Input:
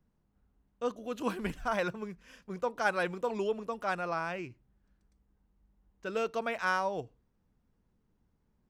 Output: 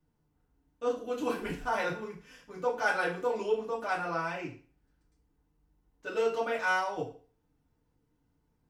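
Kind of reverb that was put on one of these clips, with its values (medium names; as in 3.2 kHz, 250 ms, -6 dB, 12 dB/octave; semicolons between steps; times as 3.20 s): FDN reverb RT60 0.41 s, low-frequency decay 0.9×, high-frequency decay 0.95×, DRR -6.5 dB; trim -6 dB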